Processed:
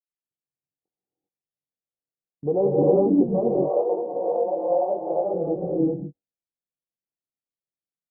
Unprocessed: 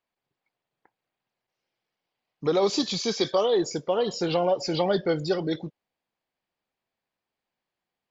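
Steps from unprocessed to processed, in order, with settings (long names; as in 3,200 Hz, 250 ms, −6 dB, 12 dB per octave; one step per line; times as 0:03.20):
adaptive Wiener filter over 41 samples
Butterworth low-pass 820 Hz 48 dB per octave
noise gate with hold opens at −38 dBFS
0:03.33–0:05.34: high-pass filter 620 Hz 12 dB per octave
double-tracking delay 21 ms −7 dB
reverb whose tail is shaped and stops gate 420 ms rising, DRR −6 dB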